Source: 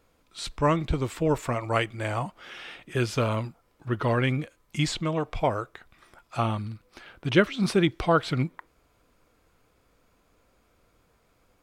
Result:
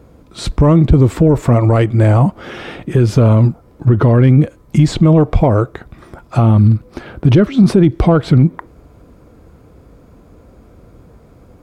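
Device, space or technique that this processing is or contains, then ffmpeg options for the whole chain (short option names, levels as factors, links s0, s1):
mastering chain: -af "highpass=43,equalizer=f=2800:t=o:w=0.77:g=-2.5,acompressor=threshold=0.0501:ratio=3,asoftclip=type=tanh:threshold=0.133,tiltshelf=f=710:g=9.5,alimiter=level_in=8.91:limit=0.891:release=50:level=0:latency=1,volume=0.891"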